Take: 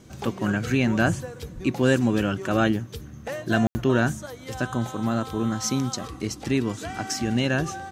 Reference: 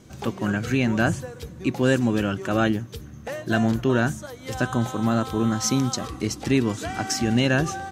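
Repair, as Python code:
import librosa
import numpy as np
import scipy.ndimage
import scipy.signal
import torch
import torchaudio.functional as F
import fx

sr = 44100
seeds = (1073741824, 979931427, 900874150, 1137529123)

y = fx.highpass(x, sr, hz=140.0, slope=24, at=(1.54, 1.66), fade=0.02)
y = fx.fix_ambience(y, sr, seeds[0], print_start_s=1.15, print_end_s=1.65, start_s=3.67, end_s=3.75)
y = fx.fix_level(y, sr, at_s=4.44, step_db=3.0)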